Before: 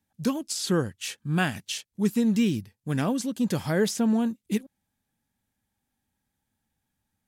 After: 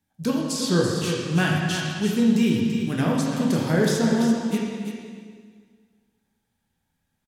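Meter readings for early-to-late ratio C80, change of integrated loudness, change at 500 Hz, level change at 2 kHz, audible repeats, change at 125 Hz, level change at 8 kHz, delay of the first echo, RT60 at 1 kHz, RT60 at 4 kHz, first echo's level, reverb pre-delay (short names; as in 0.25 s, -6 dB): 1.0 dB, +4.5 dB, +5.0 dB, +5.0 dB, 1, +5.5 dB, +2.5 dB, 0.336 s, 1.8 s, 1.7 s, -8.0 dB, 6 ms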